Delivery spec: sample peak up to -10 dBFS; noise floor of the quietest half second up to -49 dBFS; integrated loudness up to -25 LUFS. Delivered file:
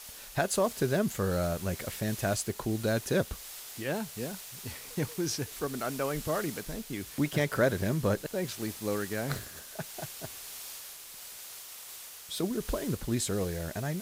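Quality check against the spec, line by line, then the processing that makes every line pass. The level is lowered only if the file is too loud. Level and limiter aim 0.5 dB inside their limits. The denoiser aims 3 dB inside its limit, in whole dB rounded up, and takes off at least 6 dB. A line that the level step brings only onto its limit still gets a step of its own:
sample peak -14.0 dBFS: OK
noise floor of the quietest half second -46 dBFS: fail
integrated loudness -33.0 LUFS: OK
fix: denoiser 6 dB, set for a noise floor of -46 dBFS

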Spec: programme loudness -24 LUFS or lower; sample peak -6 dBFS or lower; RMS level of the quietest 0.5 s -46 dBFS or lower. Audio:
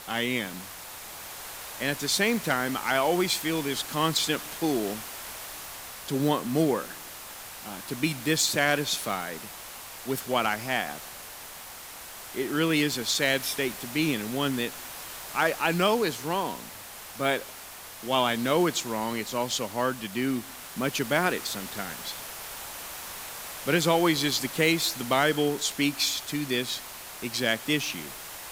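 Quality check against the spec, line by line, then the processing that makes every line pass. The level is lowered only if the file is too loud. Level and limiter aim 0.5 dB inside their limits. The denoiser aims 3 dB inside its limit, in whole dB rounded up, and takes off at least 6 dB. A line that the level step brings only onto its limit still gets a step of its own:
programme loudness -27.5 LUFS: OK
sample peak -9.5 dBFS: OK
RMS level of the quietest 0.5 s -43 dBFS: fail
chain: denoiser 6 dB, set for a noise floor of -43 dBFS

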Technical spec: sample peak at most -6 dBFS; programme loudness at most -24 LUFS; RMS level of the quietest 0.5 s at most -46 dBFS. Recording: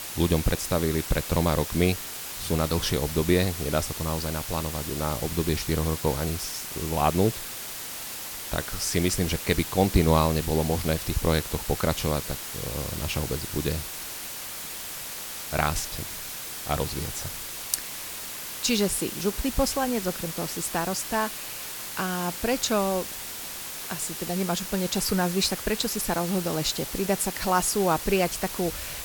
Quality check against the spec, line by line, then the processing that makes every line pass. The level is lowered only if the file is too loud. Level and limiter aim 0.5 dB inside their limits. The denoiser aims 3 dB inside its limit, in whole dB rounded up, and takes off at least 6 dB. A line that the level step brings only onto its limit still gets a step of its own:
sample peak -4.5 dBFS: fail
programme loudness -27.0 LUFS: OK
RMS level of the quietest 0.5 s -36 dBFS: fail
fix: denoiser 13 dB, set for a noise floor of -36 dBFS; limiter -6.5 dBFS

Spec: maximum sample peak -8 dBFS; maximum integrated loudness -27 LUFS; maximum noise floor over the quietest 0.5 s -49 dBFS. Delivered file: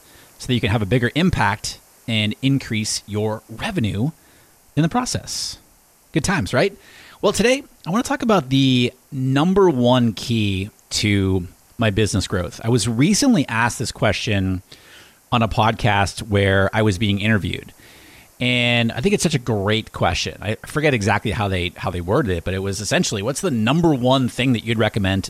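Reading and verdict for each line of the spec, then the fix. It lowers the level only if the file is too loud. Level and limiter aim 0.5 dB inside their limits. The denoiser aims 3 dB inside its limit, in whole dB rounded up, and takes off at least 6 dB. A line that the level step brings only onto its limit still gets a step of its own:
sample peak -5.0 dBFS: fail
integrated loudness -19.5 LUFS: fail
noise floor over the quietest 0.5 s -53 dBFS: OK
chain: gain -8 dB

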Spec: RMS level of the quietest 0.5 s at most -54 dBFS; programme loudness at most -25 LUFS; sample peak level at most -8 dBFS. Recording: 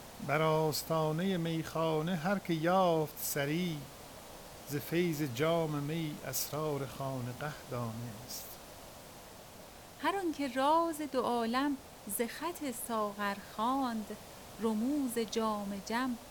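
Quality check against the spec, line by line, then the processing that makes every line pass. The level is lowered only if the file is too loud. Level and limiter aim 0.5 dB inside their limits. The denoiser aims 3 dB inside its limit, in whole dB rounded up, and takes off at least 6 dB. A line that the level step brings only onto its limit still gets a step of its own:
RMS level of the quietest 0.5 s -52 dBFS: fail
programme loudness -34.5 LUFS: OK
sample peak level -16.5 dBFS: OK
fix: denoiser 6 dB, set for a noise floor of -52 dBFS

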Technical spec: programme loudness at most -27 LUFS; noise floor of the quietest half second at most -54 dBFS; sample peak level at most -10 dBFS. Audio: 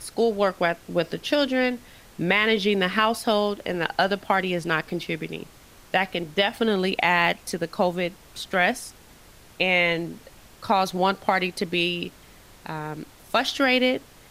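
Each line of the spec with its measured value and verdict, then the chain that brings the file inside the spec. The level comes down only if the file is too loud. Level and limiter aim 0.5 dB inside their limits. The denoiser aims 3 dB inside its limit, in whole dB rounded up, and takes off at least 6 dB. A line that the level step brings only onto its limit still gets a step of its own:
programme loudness -23.5 LUFS: fail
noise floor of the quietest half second -50 dBFS: fail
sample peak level -6.0 dBFS: fail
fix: denoiser 6 dB, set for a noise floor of -50 dBFS; gain -4 dB; limiter -10.5 dBFS

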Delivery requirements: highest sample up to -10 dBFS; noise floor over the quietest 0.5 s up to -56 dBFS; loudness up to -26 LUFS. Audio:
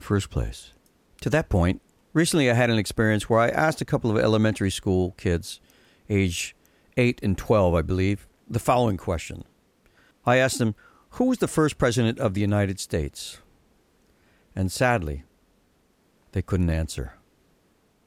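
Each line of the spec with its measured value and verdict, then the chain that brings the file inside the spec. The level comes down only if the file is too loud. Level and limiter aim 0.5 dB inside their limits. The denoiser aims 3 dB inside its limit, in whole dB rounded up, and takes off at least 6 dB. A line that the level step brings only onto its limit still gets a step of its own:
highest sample -7.0 dBFS: fail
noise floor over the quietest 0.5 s -64 dBFS: OK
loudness -24.0 LUFS: fail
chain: gain -2.5 dB; limiter -10.5 dBFS

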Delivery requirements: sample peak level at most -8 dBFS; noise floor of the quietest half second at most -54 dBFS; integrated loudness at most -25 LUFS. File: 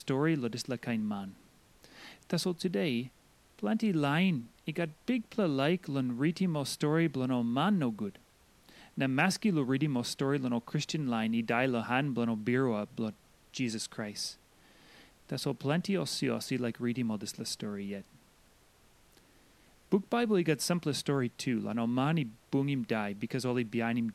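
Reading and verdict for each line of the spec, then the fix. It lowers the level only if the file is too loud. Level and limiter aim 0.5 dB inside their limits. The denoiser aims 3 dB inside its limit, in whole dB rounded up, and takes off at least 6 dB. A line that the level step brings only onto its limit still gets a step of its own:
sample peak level -12.5 dBFS: OK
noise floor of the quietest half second -63 dBFS: OK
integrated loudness -32.5 LUFS: OK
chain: none

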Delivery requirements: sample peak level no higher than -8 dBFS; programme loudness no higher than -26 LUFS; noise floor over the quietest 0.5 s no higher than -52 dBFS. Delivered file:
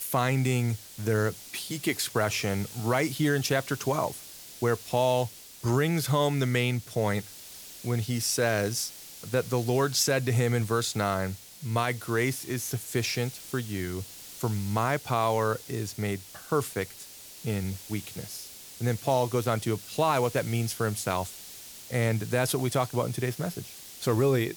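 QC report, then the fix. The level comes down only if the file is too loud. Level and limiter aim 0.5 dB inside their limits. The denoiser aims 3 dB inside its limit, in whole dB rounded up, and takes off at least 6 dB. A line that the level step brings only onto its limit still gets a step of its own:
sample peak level -13.5 dBFS: OK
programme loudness -28.5 LUFS: OK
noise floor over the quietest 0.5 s -46 dBFS: fail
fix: denoiser 9 dB, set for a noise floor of -46 dBFS

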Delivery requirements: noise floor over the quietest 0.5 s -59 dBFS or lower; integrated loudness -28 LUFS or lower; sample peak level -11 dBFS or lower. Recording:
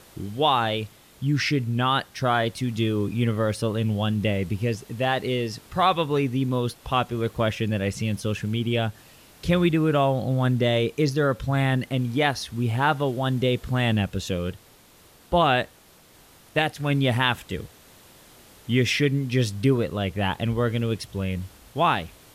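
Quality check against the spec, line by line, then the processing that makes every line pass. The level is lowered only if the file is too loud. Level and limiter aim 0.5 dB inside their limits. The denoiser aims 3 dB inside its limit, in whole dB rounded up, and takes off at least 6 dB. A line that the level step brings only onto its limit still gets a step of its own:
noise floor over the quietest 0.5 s -54 dBFS: fail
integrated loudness -24.5 LUFS: fail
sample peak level -7.0 dBFS: fail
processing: denoiser 6 dB, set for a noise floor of -54 dBFS; gain -4 dB; limiter -11.5 dBFS

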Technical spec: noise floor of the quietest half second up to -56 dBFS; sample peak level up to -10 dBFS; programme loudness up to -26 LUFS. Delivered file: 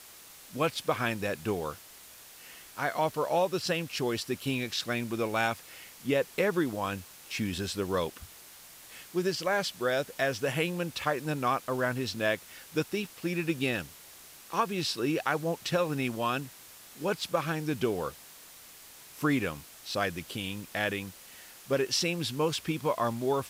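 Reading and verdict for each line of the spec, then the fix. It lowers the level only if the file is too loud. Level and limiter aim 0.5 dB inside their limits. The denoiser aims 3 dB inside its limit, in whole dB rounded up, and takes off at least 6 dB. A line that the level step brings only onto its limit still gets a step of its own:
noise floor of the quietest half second -51 dBFS: fail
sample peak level -13.0 dBFS: OK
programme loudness -31.0 LUFS: OK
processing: denoiser 8 dB, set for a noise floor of -51 dBFS

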